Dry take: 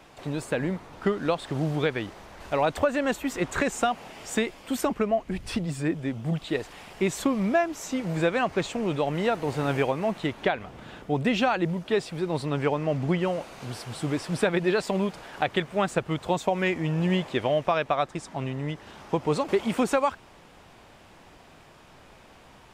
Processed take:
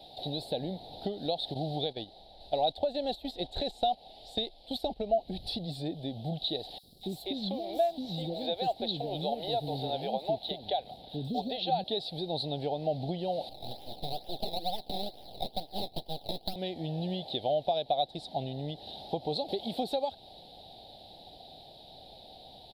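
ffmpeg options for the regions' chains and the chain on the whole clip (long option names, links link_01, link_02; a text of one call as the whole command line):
ffmpeg -i in.wav -filter_complex "[0:a]asettb=1/sr,asplit=3[link_01][link_02][link_03];[link_01]atrim=end=1.544[link_04];[link_02]atrim=start=1.54:end=5.15,asetpts=PTS-STARTPTS,afade=type=in:duration=0.004:curve=qsin,afade=type=out:start_time=3.606:duration=0.004:curve=qsin,agate=range=-9dB:threshold=-32dB:ratio=16:release=100:detection=peak,lowpass=11000,asubboost=boost=7:cutoff=59[link_05];[link_03]atrim=start=5.146[link_06];[link_04][link_05]acrossfade=duration=0.004:curve1=hsin:curve2=qsin[link_07];[link_07][link_06]acrossfade=duration=0.004:curve1=qsin:curve2=hsin,asettb=1/sr,asplit=3[link_08][link_09][link_10];[link_08]atrim=end=6.784[link_11];[link_09]atrim=start=6.78:end=11.84,asetpts=PTS-STARTPTS,afade=type=in:duration=0.004:curve=qsin,afade=type=out:start_time=5.056:duration=0.004:curve=qsin,aeval=exprs='sgn(val(0))*max(abs(val(0))-0.00282,0)':channel_layout=same,acrossover=split=390|5400[link_12][link_13][link_14];[link_12]adelay=50[link_15];[link_13]adelay=250[link_16];[link_15][link_16][link_14]amix=inputs=3:normalize=0,atrim=end_sample=223146[link_17];[link_10]atrim=start=11.836[link_18];[link_11][link_17]acrossfade=duration=0.004:curve1=hsin:curve2=qsin[link_19];[link_19][link_18]acrossfade=duration=0.004:curve1=qsin:curve2=hsin,asettb=1/sr,asplit=3[link_20][link_21][link_22];[link_20]atrim=end=13.494[link_23];[link_21]atrim=start=13.49:end=16.56,asetpts=PTS-STARTPTS,afade=type=in:duration=0.004:curve=qsin,afade=type=out:start_time=3.066:duration=0.004:curve=qsin,lowpass=frequency=1600:width=0.5412,lowpass=frequency=1600:width=1.3066,acrusher=samples=20:mix=1:aa=0.000001:lfo=1:lforange=20:lforate=2.2,aeval=exprs='abs(val(0))':channel_layout=same[link_24];[link_22]atrim=start=16.556[link_25];[link_23][link_24]acrossfade=duration=0.004:curve1=hsin:curve2=qsin[link_26];[link_26][link_25]acrossfade=duration=0.004:curve1=qsin:curve2=hsin,highshelf=frequency=2600:width_type=q:width=1.5:gain=11.5,acompressor=threshold=-30dB:ratio=2.5,firequalizer=gain_entry='entry(380,0);entry(770,12);entry(1100,-24);entry(1700,-15);entry(2700,-13);entry(3900,7);entry(6200,-28);entry(11000,-9)':delay=0.05:min_phase=1,volume=-4dB" out.wav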